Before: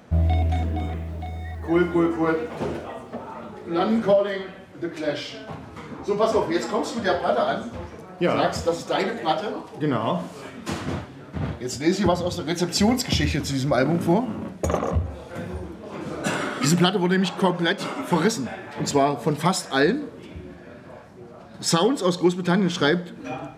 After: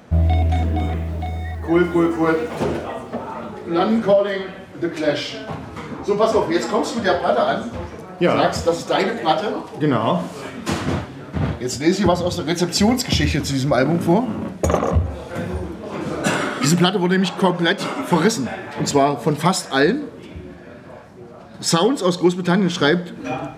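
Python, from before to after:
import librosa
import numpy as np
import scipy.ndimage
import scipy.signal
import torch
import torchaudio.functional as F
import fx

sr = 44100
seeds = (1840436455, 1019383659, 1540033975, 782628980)

p1 = fx.high_shelf(x, sr, hz=5400.0, db=6.5, at=(1.84, 2.64))
p2 = fx.rider(p1, sr, range_db=4, speed_s=0.5)
p3 = p1 + (p2 * 10.0 ** (-1.0 / 20.0))
y = p3 * 10.0 ** (-1.0 / 20.0)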